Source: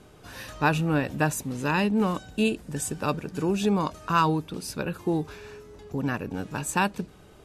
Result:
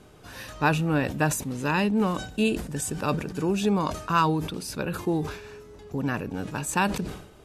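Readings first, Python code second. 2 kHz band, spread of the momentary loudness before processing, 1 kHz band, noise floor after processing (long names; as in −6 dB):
+0.5 dB, 15 LU, 0.0 dB, −51 dBFS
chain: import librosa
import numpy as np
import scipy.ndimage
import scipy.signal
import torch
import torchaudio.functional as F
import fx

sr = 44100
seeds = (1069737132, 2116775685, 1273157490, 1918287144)

y = fx.sustainer(x, sr, db_per_s=82.0)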